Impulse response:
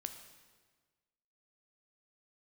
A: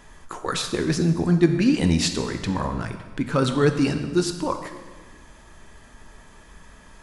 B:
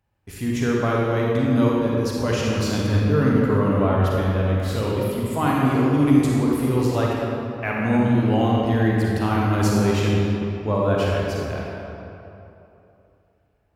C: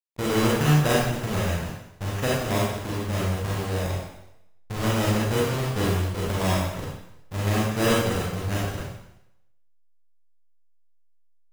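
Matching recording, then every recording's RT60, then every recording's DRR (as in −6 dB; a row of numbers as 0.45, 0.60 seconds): A; 1.5, 2.9, 0.80 seconds; 6.5, −4.0, −5.5 decibels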